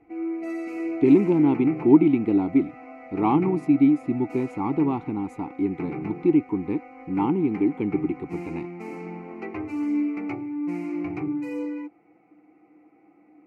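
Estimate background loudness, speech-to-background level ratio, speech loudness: −33.0 LKFS, 10.5 dB, −22.5 LKFS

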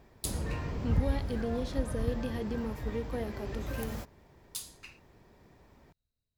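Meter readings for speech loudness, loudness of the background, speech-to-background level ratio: −38.5 LKFS, −37.0 LKFS, −1.5 dB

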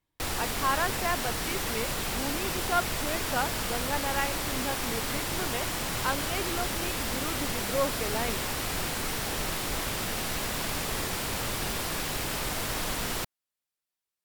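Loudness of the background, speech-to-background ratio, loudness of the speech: −30.5 LKFS, −3.5 dB, −34.0 LKFS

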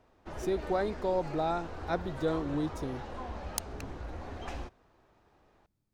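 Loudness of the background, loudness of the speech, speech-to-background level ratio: −42.5 LKFS, −34.0 LKFS, 8.5 dB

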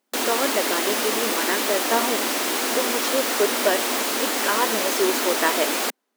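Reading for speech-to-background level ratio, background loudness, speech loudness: −4.5 dB, −22.0 LKFS, −26.5 LKFS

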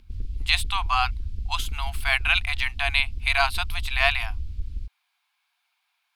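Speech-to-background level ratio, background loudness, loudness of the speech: 11.0 dB, −35.5 LKFS, −24.5 LKFS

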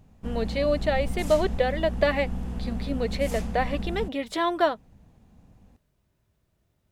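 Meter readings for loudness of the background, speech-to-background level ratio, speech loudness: −34.0 LKFS, 7.0 dB, −27.0 LKFS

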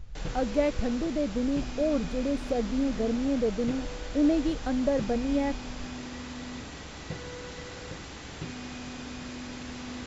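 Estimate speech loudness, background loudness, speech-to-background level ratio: −29.0 LKFS, −39.5 LKFS, 10.5 dB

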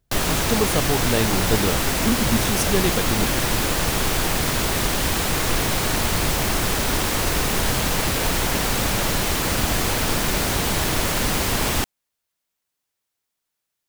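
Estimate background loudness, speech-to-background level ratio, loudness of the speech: −21.0 LKFS, −4.5 dB, −25.5 LKFS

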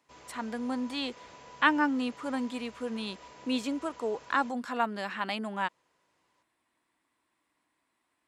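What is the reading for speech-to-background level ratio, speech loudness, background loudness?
19.0 dB, −32.0 LKFS, −51.0 LKFS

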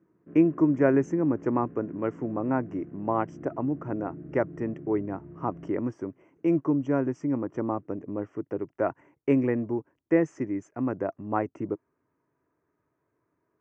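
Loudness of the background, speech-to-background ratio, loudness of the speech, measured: −45.0 LKFS, 16.5 dB, −28.5 LKFS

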